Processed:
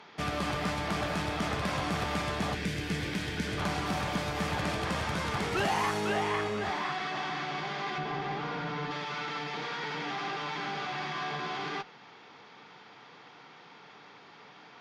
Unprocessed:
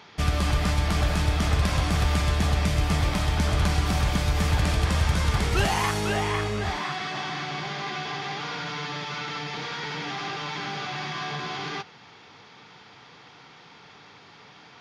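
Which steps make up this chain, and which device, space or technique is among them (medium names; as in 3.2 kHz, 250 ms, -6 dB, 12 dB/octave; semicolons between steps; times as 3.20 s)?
high-pass 160 Hz 12 dB/octave; tube preamp driven hard (valve stage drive 19 dB, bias 0.3; bass shelf 200 Hz -3.5 dB; treble shelf 3.6 kHz -9 dB); 2.55–3.58 s: time-frequency box 530–1400 Hz -11 dB; 7.98–8.91 s: tilt EQ -2.5 dB/octave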